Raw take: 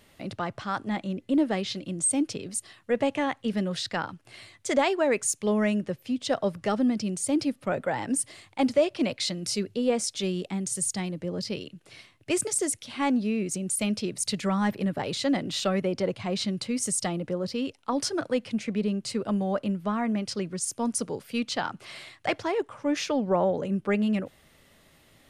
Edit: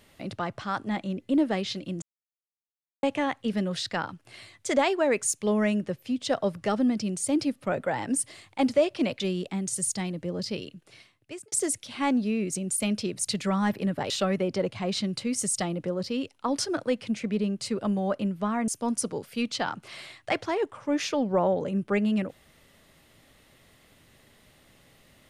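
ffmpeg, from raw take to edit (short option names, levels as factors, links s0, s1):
-filter_complex "[0:a]asplit=7[s0][s1][s2][s3][s4][s5][s6];[s0]atrim=end=2.02,asetpts=PTS-STARTPTS,afade=t=out:st=2.016:d=0.004:c=hsin[s7];[s1]atrim=start=2.02:end=3.03,asetpts=PTS-STARTPTS,volume=0[s8];[s2]atrim=start=3.03:end=9.202,asetpts=PTS-STARTPTS,afade=t=in:d=0.004:c=hsin[s9];[s3]atrim=start=10.188:end=12.51,asetpts=PTS-STARTPTS,afade=t=out:st=1.472:d=0.85[s10];[s4]atrim=start=12.51:end=15.092,asetpts=PTS-STARTPTS,afade=t=in:d=0.004:c=hsin[s11];[s5]atrim=start=15.538:end=20.122[s12];[s6]atrim=start=20.648[s13];[s7][s8][s9]concat=n=3:v=0:a=1[s14];[s10][s11]concat=n=2:v=0:a=1[s15];[s14][s15]acrossfade=d=0.004:c1=hsin:c2=hsin[s16];[s16][s12]acrossfade=d=0.004:c1=hsin:c2=hsin[s17];[s17][s13]acrossfade=d=0.004:c1=hsin:c2=hsin"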